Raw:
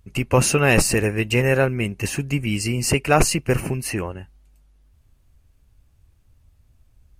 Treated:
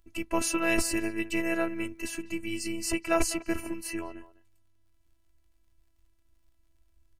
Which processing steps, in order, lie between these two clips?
phases set to zero 332 Hz
far-end echo of a speakerphone 200 ms, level −16 dB
surface crackle 64 per second −56 dBFS
level −7 dB

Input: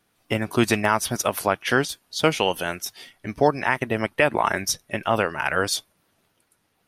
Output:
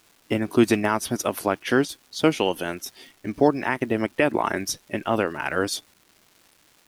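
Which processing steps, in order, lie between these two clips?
parametric band 300 Hz +9.5 dB 1.1 octaves
surface crackle 590 per second −40 dBFS
level −4 dB

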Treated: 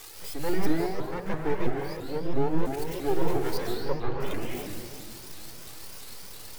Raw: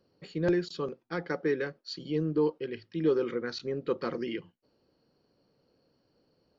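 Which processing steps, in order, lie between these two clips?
spike at every zero crossing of −31 dBFS
reverb reduction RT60 1.6 s
0:00.66–0:02.66: high-shelf EQ 2,300 Hz −12 dB
in parallel at −1 dB: brickwall limiter −26 dBFS, peak gain reduction 9.5 dB
on the sum: half-wave rectification
0:03.57–0:04.20: high-frequency loss of the air 230 metres
convolution reverb RT60 2.0 s, pre-delay 134 ms, DRR −2 dB
pitch modulation by a square or saw wave saw up 3 Hz, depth 250 cents
level −4 dB

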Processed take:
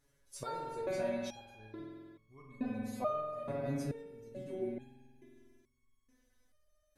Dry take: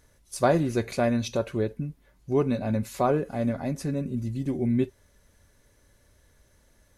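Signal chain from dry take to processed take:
spring reverb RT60 1.9 s, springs 46 ms, chirp 70 ms, DRR −1 dB
step-sequenced resonator 2.3 Hz 140–1,100 Hz

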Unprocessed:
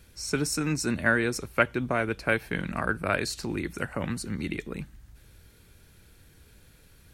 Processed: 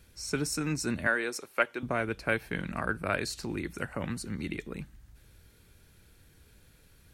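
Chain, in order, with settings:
0:01.07–0:01.83: high-pass filter 380 Hz 12 dB per octave
level −3.5 dB

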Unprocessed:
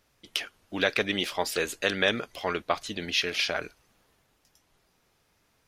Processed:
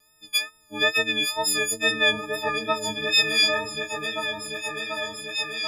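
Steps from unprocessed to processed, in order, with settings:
every partial snapped to a pitch grid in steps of 6 semitones
tape wow and flutter 46 cents
on a send: echo whose low-pass opens from repeat to repeat 738 ms, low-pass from 400 Hz, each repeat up 2 octaves, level −3 dB
on the sum: level −2.5 dB

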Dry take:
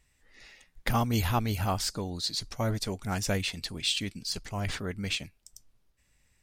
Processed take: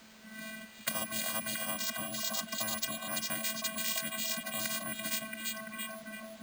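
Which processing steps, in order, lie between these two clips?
low shelf with overshoot 270 Hz −8.5 dB, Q 3
frequency shifter −140 Hz
channel vocoder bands 16, square 219 Hz
bit-depth reduction 12 bits, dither triangular
on a send: echo through a band-pass that steps 338 ms, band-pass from 3,300 Hz, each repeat −0.7 octaves, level −4.5 dB
on the sum: bad sample-rate conversion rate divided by 4×, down filtered, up hold
every bin compressed towards the loudest bin 10 to 1

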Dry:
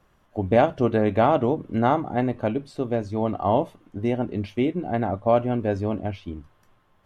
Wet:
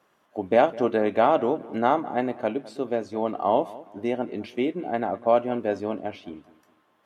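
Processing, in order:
high-pass filter 280 Hz 12 dB per octave
delay with a low-pass on its return 207 ms, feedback 33%, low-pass 2,800 Hz, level −19 dB

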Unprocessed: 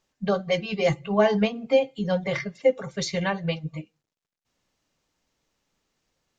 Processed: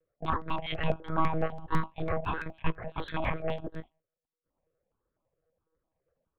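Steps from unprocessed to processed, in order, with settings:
treble cut that deepens with the level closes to 1,300 Hz, closed at −21 dBFS
parametric band 340 Hz −11 dB 1.4 octaves
low-pass that shuts in the quiet parts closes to 640 Hz, open at −27.5 dBFS
ring modulation 500 Hz
in parallel at −5.5 dB: soft clipping −31 dBFS, distortion −7 dB
on the sum: one-pitch LPC vocoder at 8 kHz 160 Hz
step-sequenced phaser 12 Hz 230–2,800 Hz
level +3 dB

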